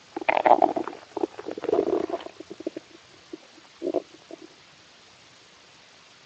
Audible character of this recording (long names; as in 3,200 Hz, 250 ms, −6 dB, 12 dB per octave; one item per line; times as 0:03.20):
a quantiser's noise floor 8 bits, dither triangular
Speex